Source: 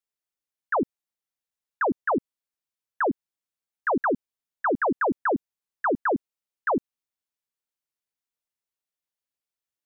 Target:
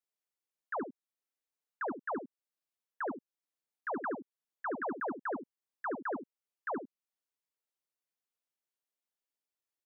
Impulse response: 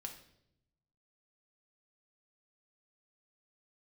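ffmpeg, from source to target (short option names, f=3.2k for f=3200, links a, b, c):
-af "highpass=210,equalizer=f=430:w=0.48:g=3.5,alimiter=level_in=2.5dB:limit=-24dB:level=0:latency=1:release=393,volume=-2.5dB,aecho=1:1:72:0.316,volume=-5dB"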